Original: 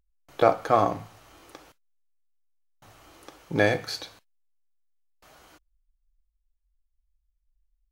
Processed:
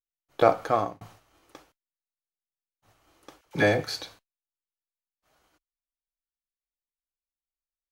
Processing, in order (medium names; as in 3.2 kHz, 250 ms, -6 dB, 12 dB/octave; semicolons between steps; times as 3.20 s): expander -44 dBFS; 0.45–1.01 s: fade out equal-power; 3.41–3.83 s: phase dispersion lows, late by 46 ms, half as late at 820 Hz